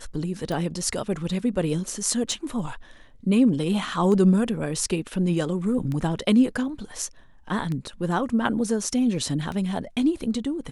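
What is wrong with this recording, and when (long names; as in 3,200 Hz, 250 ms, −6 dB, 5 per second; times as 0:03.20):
scratch tick 33 1/3 rpm −19 dBFS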